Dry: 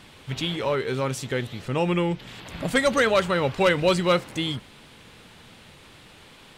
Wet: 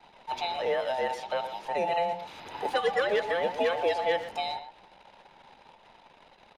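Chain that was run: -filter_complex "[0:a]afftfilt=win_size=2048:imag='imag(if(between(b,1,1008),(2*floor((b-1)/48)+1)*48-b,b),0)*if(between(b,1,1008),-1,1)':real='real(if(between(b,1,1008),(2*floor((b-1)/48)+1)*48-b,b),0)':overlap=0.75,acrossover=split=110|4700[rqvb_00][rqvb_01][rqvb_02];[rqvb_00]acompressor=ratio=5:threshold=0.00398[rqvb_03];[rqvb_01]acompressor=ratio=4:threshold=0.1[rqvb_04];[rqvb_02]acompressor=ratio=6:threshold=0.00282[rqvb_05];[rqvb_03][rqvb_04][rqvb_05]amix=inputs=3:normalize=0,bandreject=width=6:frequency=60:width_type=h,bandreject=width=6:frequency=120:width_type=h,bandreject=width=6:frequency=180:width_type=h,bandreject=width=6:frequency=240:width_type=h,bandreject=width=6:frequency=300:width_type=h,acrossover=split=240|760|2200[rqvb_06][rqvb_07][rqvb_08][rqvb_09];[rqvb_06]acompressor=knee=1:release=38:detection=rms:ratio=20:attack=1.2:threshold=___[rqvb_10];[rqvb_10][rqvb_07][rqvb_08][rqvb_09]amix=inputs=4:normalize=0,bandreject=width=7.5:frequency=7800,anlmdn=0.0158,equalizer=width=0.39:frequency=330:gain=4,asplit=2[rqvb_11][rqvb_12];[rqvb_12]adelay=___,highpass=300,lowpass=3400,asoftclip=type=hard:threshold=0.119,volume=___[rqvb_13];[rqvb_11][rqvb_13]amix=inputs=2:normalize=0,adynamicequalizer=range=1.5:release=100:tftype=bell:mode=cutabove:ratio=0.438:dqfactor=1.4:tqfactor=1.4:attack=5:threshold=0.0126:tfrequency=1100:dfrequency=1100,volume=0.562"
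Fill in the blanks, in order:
0.00355, 120, 0.316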